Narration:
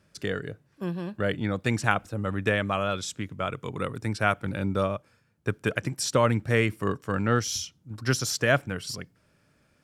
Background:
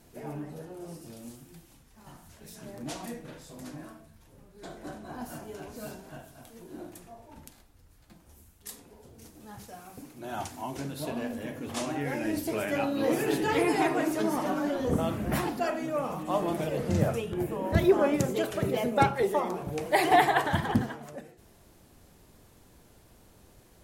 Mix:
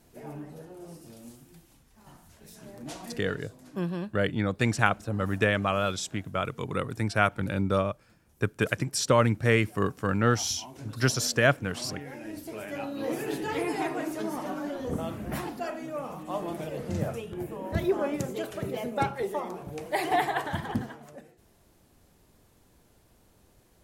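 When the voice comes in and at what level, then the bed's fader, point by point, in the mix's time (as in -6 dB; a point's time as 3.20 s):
2.95 s, +0.5 dB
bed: 3.35 s -2.5 dB
3.59 s -9.5 dB
12.23 s -9.5 dB
13.13 s -4.5 dB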